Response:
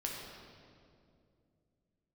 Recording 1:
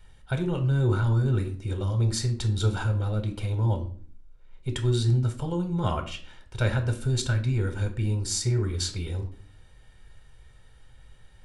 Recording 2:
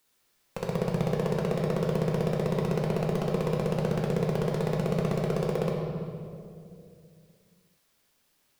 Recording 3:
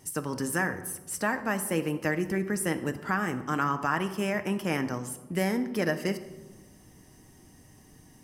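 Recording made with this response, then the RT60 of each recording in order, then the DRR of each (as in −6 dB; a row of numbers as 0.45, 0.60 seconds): 2; 0.45 s, 2.4 s, non-exponential decay; 6.0, −2.5, 8.0 decibels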